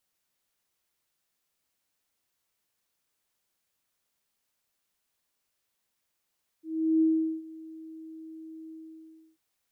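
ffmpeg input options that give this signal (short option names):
-f lavfi -i "aevalsrc='0.112*sin(2*PI*320*t)':d=2.744:s=44100,afade=t=in:d=0.381,afade=t=out:st=0.381:d=0.407:silence=0.0794,afade=t=out:st=2.08:d=0.664"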